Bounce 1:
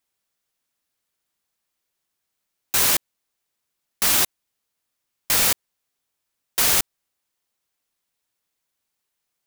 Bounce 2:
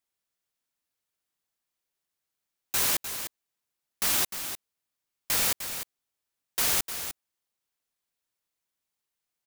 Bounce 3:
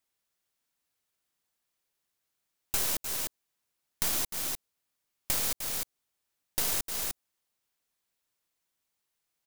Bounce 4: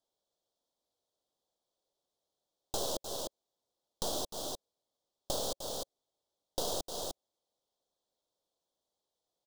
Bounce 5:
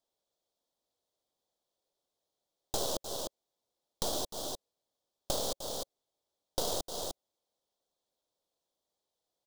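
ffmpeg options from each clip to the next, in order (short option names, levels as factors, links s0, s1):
-af "aecho=1:1:303:0.335,volume=0.447"
-filter_complex "[0:a]acrossover=split=880|4000[s0][s1][s2];[s0]acompressor=threshold=0.00562:ratio=4[s3];[s1]acompressor=threshold=0.00355:ratio=4[s4];[s2]acompressor=threshold=0.0224:ratio=4[s5];[s3][s4][s5]amix=inputs=3:normalize=0,aeval=exprs='0.133*(cos(1*acos(clip(val(0)/0.133,-1,1)))-cos(1*PI/2))+0.0266*(cos(6*acos(clip(val(0)/0.133,-1,1)))-cos(6*PI/2))':c=same,volume=1.41"
-af "firequalizer=gain_entry='entry(160,0);entry(550,13);entry(2200,-27);entry(3300,3);entry(12000,-11)':delay=0.05:min_phase=1,volume=0.668"
-af "aeval=exprs='0.126*(cos(1*acos(clip(val(0)/0.126,-1,1)))-cos(1*PI/2))+0.0501*(cos(2*acos(clip(val(0)/0.126,-1,1)))-cos(2*PI/2))':c=same"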